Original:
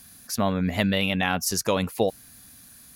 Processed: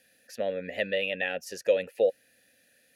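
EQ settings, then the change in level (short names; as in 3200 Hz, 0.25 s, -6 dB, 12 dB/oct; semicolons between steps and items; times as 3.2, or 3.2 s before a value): vowel filter e; high shelf 7800 Hz +12 dB; +5.5 dB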